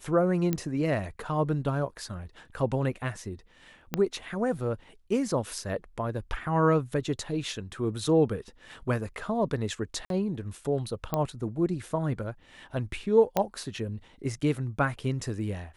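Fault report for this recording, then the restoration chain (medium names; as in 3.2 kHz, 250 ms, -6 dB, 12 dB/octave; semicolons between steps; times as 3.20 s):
0.53 s: pop -14 dBFS
3.94 s: pop -13 dBFS
10.05–10.10 s: dropout 52 ms
11.14 s: pop -14 dBFS
13.37 s: pop -11 dBFS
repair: de-click; interpolate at 10.05 s, 52 ms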